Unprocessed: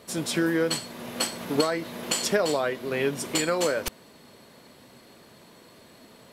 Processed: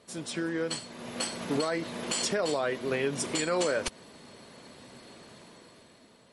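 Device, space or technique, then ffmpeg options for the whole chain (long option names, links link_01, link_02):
low-bitrate web radio: -af "dynaudnorm=framelen=230:gausssize=9:maxgain=11dB,alimiter=limit=-10.5dB:level=0:latency=1:release=90,volume=-8dB" -ar 48000 -c:a libmp3lame -b:a 48k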